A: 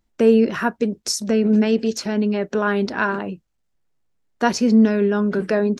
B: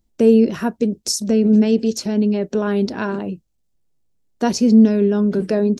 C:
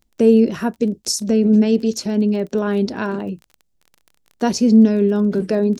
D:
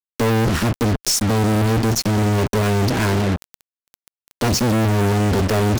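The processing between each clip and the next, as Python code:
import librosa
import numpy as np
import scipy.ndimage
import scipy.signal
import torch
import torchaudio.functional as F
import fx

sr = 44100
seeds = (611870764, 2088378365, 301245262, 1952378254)

y1 = fx.peak_eq(x, sr, hz=1500.0, db=-12.0, octaves=2.1)
y1 = y1 * librosa.db_to_amplitude(4.0)
y2 = fx.dmg_crackle(y1, sr, seeds[0], per_s=23.0, level_db=-32.0)
y3 = fx.octave_divider(y2, sr, octaves=1, level_db=1.0)
y3 = fx.fuzz(y3, sr, gain_db=37.0, gate_db=-32.0)
y3 = fx.power_curve(y3, sr, exponent=2.0)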